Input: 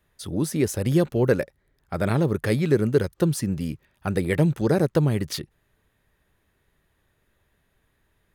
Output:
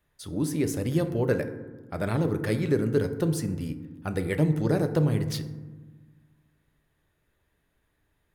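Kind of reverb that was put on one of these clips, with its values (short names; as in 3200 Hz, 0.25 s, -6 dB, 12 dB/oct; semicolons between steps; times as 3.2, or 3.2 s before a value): FDN reverb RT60 1.3 s, low-frequency decay 1.45×, high-frequency decay 0.35×, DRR 7.5 dB; gain -5 dB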